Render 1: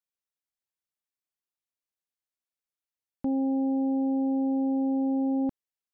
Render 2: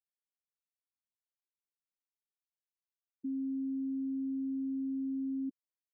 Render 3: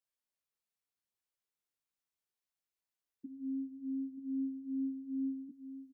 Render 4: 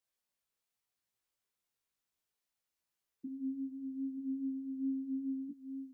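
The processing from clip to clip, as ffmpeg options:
-af "highpass=f=250:p=1,afftfilt=real='re*gte(hypot(re,im),0.126)':imag='im*gte(hypot(re,im),0.126)':win_size=1024:overlap=0.75,volume=-6dB"
-af "alimiter=level_in=13.5dB:limit=-24dB:level=0:latency=1:release=188,volume=-13.5dB,flanger=delay=16.5:depth=2.1:speed=2.4,aecho=1:1:933:0.335,volume=4.5dB"
-af "flanger=delay=15.5:depth=2.3:speed=1.2,volume=6.5dB"

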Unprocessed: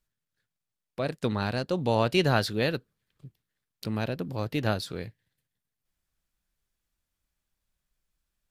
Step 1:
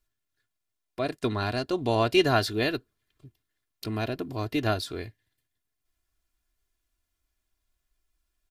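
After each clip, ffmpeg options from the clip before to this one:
-af "aecho=1:1:2.9:0.69"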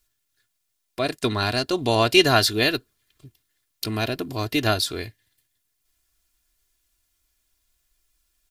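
-af "highshelf=f=2.5k:g=10,volume=3.5dB"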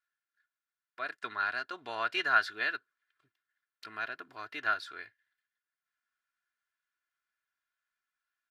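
-af "bandpass=f=1.5k:t=q:w=4.4:csg=0"

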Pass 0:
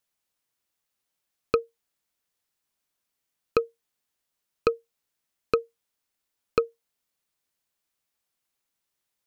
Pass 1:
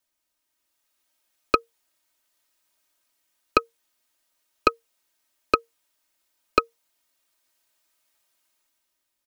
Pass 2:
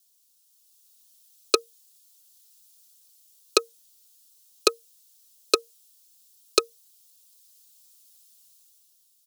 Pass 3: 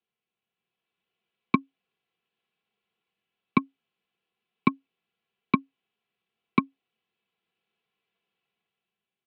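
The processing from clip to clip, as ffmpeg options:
-filter_complex "[0:a]aecho=1:1:3.2:0.85,acrossover=split=400[a][b];[b]dynaudnorm=f=170:g=9:m=8dB[c];[a][c]amix=inputs=2:normalize=0"
-af "aeval=exprs='0.891*(cos(1*acos(clip(val(0)/0.891,-1,1)))-cos(1*PI/2))+0.0447*(cos(8*acos(clip(val(0)/0.891,-1,1)))-cos(8*PI/2))':c=same,highpass=f=410:t=q:w=3.8,aexciter=amount=10.5:drive=3.8:freq=3.1k,volume=-7.5dB"
-af "highpass=f=220:t=q:w=0.5412,highpass=f=220:t=q:w=1.307,lowpass=f=2.7k:t=q:w=0.5176,lowpass=f=2.7k:t=q:w=0.7071,lowpass=f=2.7k:t=q:w=1.932,afreqshift=-190"

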